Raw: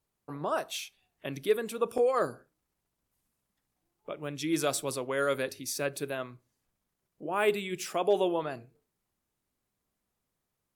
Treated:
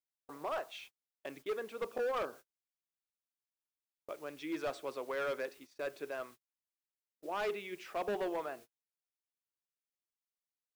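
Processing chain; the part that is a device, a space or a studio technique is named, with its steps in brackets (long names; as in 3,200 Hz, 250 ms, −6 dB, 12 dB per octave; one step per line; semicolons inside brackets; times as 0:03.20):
aircraft radio (band-pass filter 390–2,400 Hz; hard clipping −27.5 dBFS, distortion −10 dB; white noise bed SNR 22 dB; noise gate −48 dBFS, range −38 dB)
level −4 dB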